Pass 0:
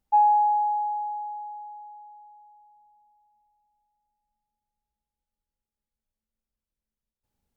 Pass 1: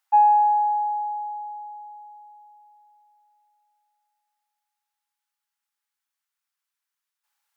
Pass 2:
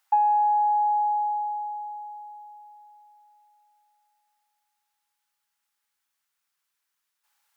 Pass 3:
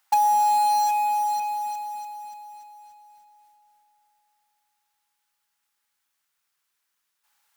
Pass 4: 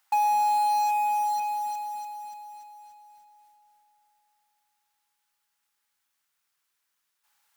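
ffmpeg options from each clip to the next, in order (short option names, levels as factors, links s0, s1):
-af "highpass=f=960:w=0.5412,highpass=f=960:w=1.3066,equalizer=f=1500:t=o:w=0.99:g=3.5,volume=2.51"
-af "acompressor=threshold=0.0501:ratio=5,volume=1.88"
-filter_complex "[0:a]asplit=2[s0][s1];[s1]volume=31.6,asoftclip=hard,volume=0.0316,volume=0.355[s2];[s0][s2]amix=inputs=2:normalize=0,acrusher=bits=3:mode=log:mix=0:aa=0.000001"
-af "asoftclip=type=tanh:threshold=0.133,volume=0.891"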